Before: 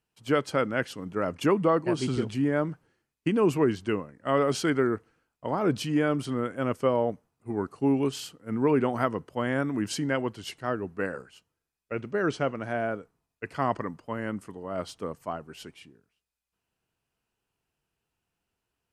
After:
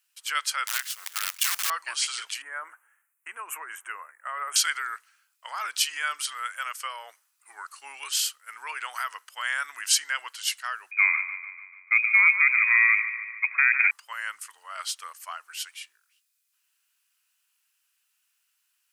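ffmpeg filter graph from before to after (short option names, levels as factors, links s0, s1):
-filter_complex "[0:a]asettb=1/sr,asplit=3[s0][s1][s2];[s0]atrim=end=0.674[s3];[s1]atrim=start=0.67:end=1.7,asetpts=PTS-STARTPTS,afade=t=in:d=0.004:c=qsin,afade=t=out:st=1.026:d=0.004:c=qsin,acompressor=threshold=0.0398:ratio=10:attack=3.2:release=140:knee=1:detection=peak,acrusher=bits=6:dc=4:mix=0:aa=0.000001[s4];[s2]atrim=start=1.696[s5];[s3][s4]acrossfade=d=0.004:c1=hsin:c2=qsin[s6];[s6][s5]acrossfade=d=0.004:c1=qsin:c2=hsin,asettb=1/sr,asplit=3[s7][s8][s9];[s7]atrim=end=2.424[s10];[s8]atrim=start=2.42:end=4.56,asetpts=PTS-STARTPTS,afade=t=in:d=0.004:c=qsin,afade=t=out:st=2.136:d=0.004:c=qsin,asuperstop=centerf=4400:order=4:qfactor=0.63,equalizer=f=390:w=0.33:g=8.5[s11];[s9]atrim=start=4.556[s12];[s10][s11]acrossfade=d=0.004:c1=hsin:c2=qsin[s13];[s13][s12]acrossfade=d=0.004:c1=qsin:c2=hsin,asettb=1/sr,asplit=3[s14][s15][s16];[s14]atrim=end=10.914[s17];[s15]atrim=start=10.91:end=13.91,asetpts=PTS-STARTPTS,afade=t=in:d=0.004:c=qsin,afade=t=out:st=2.996:d=0.004:c=qsin,lowshelf=f=430:g=5.5,lowpass=f=2200:t=q:w=0.5098,lowpass=f=2200:t=q:w=0.6013,lowpass=f=2200:t=q:w=0.9,lowpass=f=2200:t=q:w=2.563,afreqshift=-2600,aecho=1:1:147|294|441|588|735|882:0.237|0.135|0.077|0.0439|0.025|0.0143,atrim=end_sample=132300[s18];[s16]atrim=start=13.906[s19];[s17][s18]acrossfade=d=0.004:c1=hsin:c2=qsin[s20];[s20][s19]acrossfade=d=0.004:c1=qsin:c2=hsin,alimiter=limit=0.133:level=0:latency=1,highpass=f=1300:w=0.5412,highpass=f=1300:w=1.3066,highshelf=f=5000:g=11.5,volume=2.24"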